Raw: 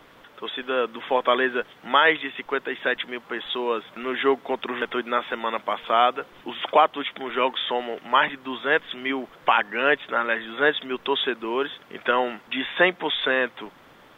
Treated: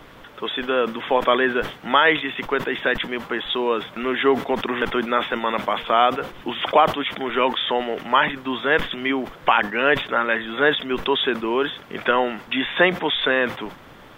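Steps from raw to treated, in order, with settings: in parallel at -2 dB: compression, threshold -28 dBFS, peak gain reduction 15.5 dB; on the sum: bass shelf 140 Hz +10 dB; decay stretcher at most 140 dB/s

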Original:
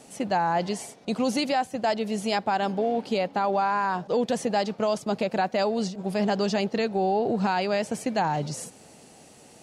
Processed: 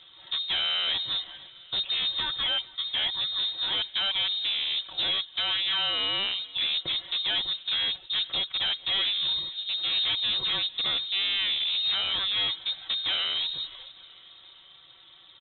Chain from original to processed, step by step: granular stretch 1.6×, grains 27 ms; wavefolder -22.5 dBFS; on a send: feedback delay 451 ms, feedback 59%, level -23 dB; on the sum: frequency inversion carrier 3.9 kHz

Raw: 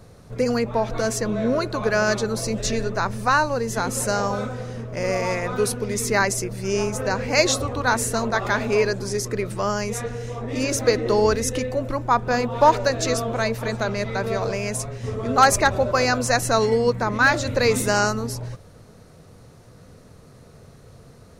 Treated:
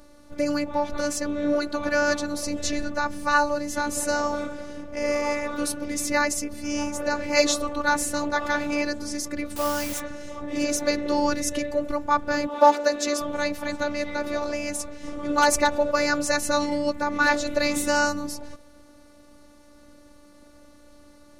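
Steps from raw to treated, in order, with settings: 12.47–13.21 s: steep high-pass 150 Hz 96 dB/octave; robot voice 293 Hz; 9.56–10.00 s: word length cut 6-bit, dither triangular

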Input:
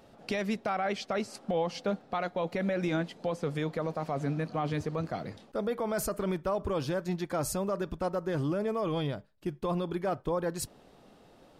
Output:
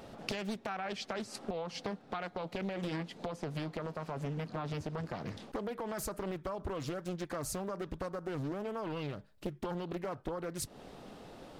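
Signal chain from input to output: compression 6:1, threshold -41 dBFS, peak gain reduction 14.5 dB; dynamic bell 600 Hz, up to -4 dB, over -58 dBFS, Q 1.4; loudspeaker Doppler distortion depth 0.97 ms; trim +7 dB

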